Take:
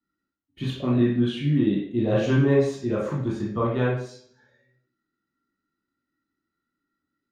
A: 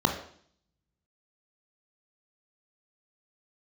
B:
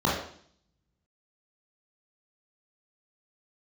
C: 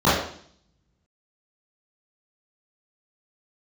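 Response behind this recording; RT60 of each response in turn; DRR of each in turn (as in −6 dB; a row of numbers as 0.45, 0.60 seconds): B; 0.55, 0.55, 0.55 seconds; 4.0, −5.5, −12.5 decibels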